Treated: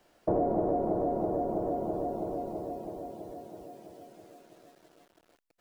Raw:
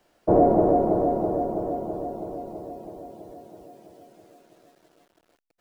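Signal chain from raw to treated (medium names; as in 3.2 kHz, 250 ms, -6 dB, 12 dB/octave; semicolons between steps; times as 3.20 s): compression 3:1, threshold -28 dBFS, peak gain reduction 11.5 dB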